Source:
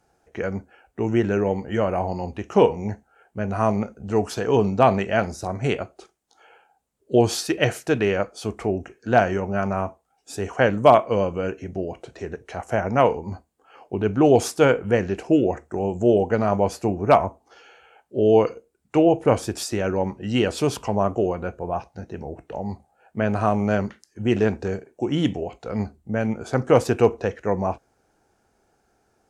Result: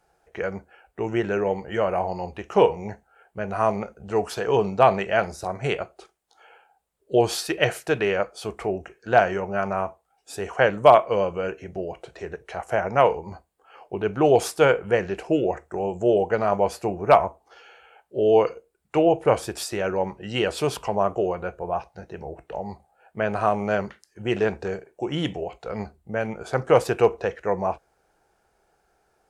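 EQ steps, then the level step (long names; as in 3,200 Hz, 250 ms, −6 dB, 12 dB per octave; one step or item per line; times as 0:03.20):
graphic EQ with 15 bands 100 Hz −9 dB, 250 Hz −12 dB, 6,300 Hz −5 dB
+1.0 dB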